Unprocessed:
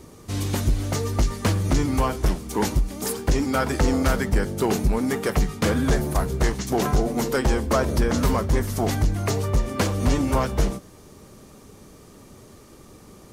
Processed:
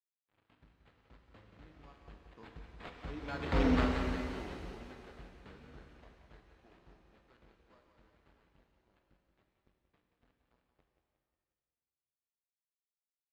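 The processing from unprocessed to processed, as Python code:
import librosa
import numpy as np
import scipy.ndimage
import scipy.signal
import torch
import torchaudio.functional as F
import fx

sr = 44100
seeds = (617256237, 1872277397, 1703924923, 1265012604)

p1 = fx.doppler_pass(x, sr, speed_mps=25, closest_m=2.3, pass_at_s=3.66)
p2 = scipy.signal.sosfilt(scipy.signal.butter(2, 45.0, 'highpass', fs=sr, output='sos'), p1)
p3 = fx.high_shelf(p2, sr, hz=3700.0, db=11.5)
p4 = fx.sample_hold(p3, sr, seeds[0], rate_hz=5800.0, jitter_pct=0)
p5 = np.sign(p4) * np.maximum(np.abs(p4) - 10.0 ** (-52.5 / 20.0), 0.0)
p6 = fx.air_absorb(p5, sr, metres=200.0)
p7 = p6 + fx.echo_feedback(p6, sr, ms=179, feedback_pct=49, wet_db=-8.0, dry=0)
p8 = fx.rev_shimmer(p7, sr, seeds[1], rt60_s=2.0, semitones=7, shimmer_db=-8, drr_db=4.5)
y = p8 * librosa.db_to_amplitude(-6.5)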